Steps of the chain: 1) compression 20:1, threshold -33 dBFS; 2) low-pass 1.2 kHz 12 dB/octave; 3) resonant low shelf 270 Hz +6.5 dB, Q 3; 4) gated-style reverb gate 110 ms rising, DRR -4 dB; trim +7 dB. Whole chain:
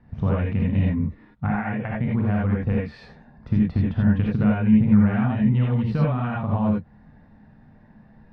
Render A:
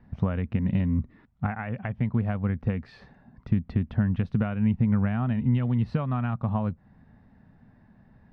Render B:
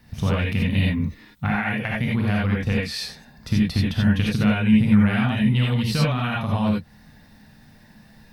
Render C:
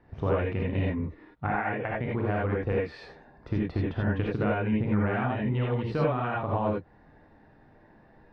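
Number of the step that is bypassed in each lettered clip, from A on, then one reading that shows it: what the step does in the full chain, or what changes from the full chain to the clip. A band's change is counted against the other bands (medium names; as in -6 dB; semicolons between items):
4, momentary loudness spread change -1 LU; 2, 2 kHz band +8.0 dB; 3, 250 Hz band -10.5 dB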